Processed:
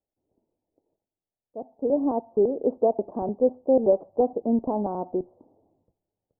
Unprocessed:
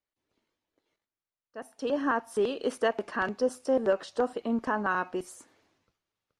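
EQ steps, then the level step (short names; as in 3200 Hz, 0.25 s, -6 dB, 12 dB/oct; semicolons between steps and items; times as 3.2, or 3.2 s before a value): steep low-pass 820 Hz 48 dB/oct; +6.0 dB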